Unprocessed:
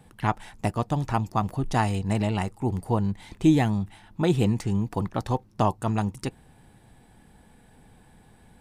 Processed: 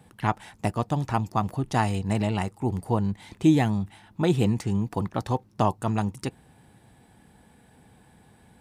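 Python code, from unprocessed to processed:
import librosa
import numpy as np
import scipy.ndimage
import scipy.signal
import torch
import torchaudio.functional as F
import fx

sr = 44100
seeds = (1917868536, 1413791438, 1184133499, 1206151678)

y = scipy.signal.sosfilt(scipy.signal.butter(2, 66.0, 'highpass', fs=sr, output='sos'), x)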